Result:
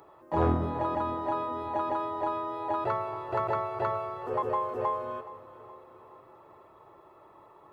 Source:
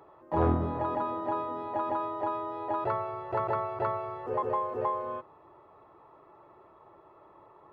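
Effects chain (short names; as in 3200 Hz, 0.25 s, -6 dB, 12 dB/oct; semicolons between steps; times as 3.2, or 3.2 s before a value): high shelf 4000 Hz +11.5 dB; on a send: split-band echo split 330 Hz, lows 0.579 s, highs 0.421 s, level -16 dB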